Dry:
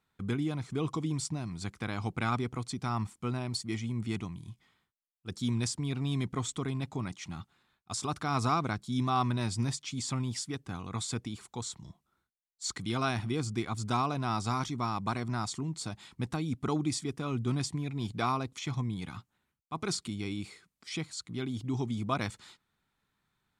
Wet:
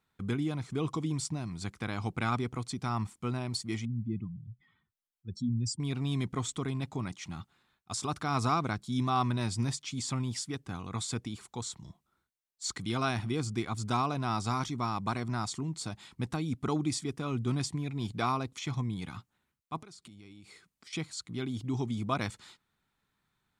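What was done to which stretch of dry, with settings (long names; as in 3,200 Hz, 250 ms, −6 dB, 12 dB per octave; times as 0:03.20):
0:03.85–0:05.80: expanding power law on the bin magnitudes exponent 2.2
0:19.82–0:20.93: downward compressor 10 to 1, threshold −48 dBFS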